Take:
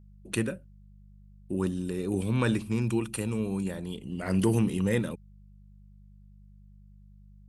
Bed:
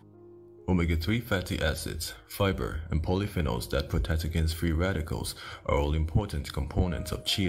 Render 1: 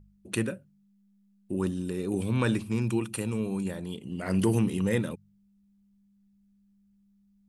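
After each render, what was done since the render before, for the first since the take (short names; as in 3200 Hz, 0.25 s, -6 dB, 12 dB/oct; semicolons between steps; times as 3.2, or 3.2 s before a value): de-hum 50 Hz, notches 3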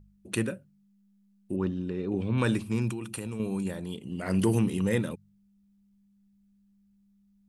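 1.56–2.38 air absorption 220 m; 2.91–3.4 compressor, threshold -31 dBFS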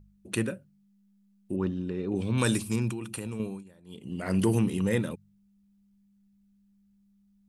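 2.15–2.76 tone controls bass 0 dB, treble +14 dB; 3.39–4.09 dip -20.5 dB, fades 0.25 s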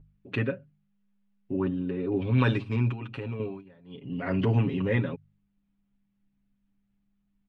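LPF 3100 Hz 24 dB/oct; comb 7.3 ms, depth 88%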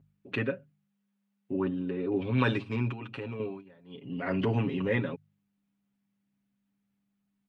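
HPF 71 Hz; low shelf 120 Hz -10.5 dB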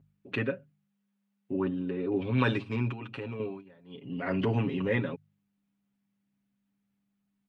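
nothing audible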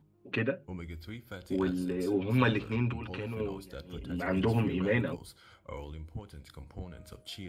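add bed -15.5 dB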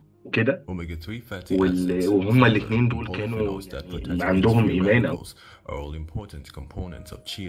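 gain +9.5 dB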